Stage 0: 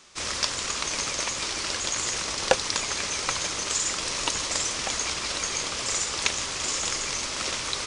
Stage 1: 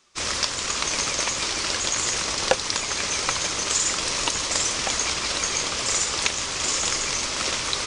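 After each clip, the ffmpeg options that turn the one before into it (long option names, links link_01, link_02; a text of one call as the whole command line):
ffmpeg -i in.wav -filter_complex "[0:a]afftdn=noise_reduction=13:noise_floor=-47,asplit=2[link_01][link_02];[link_02]alimiter=limit=-12dB:level=0:latency=1:release=371,volume=0dB[link_03];[link_01][link_03]amix=inputs=2:normalize=0,volume=-2dB" out.wav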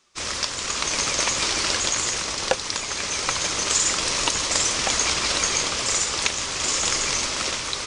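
ffmpeg -i in.wav -af "dynaudnorm=framelen=100:gausssize=13:maxgain=7dB,volume=-2dB" out.wav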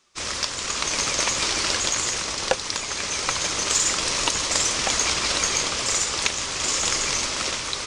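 ffmpeg -i in.wav -af "aeval=exprs='0.75*(cos(1*acos(clip(val(0)/0.75,-1,1)))-cos(1*PI/2))+0.0075*(cos(6*acos(clip(val(0)/0.75,-1,1)))-cos(6*PI/2))+0.00531*(cos(7*acos(clip(val(0)/0.75,-1,1)))-cos(7*PI/2))':channel_layout=same" out.wav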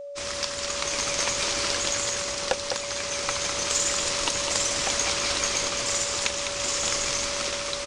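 ffmpeg -i in.wav -filter_complex "[0:a]aeval=exprs='val(0)+0.0282*sin(2*PI*570*n/s)':channel_layout=same,asplit=2[link_01][link_02];[link_02]aecho=0:1:204:0.473[link_03];[link_01][link_03]amix=inputs=2:normalize=0,volume=-4dB" out.wav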